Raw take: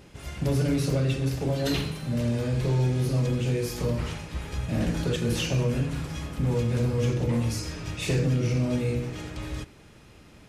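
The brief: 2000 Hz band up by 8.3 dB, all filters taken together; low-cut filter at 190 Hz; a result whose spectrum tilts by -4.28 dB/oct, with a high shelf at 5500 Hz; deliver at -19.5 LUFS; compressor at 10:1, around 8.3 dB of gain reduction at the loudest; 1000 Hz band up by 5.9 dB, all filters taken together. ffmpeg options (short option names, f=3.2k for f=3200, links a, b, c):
-af "highpass=190,equalizer=f=1k:t=o:g=5,equalizer=f=2k:t=o:g=8.5,highshelf=f=5.5k:g=6.5,acompressor=threshold=-30dB:ratio=10,volume=14.5dB"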